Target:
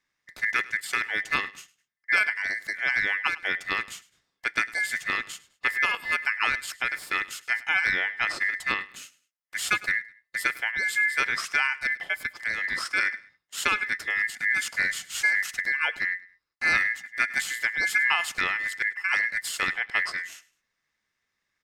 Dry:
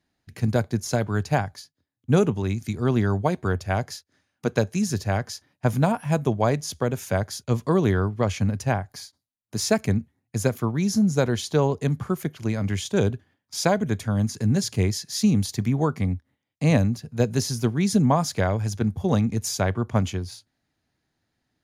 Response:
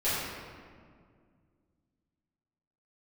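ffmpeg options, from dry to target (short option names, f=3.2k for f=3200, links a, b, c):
-af "equalizer=f=3.2k:w=3.4:g=9.5,aeval=exprs='val(0)*sin(2*PI*1900*n/s)':c=same,aecho=1:1:103|206:0.1|0.03,volume=-1.5dB"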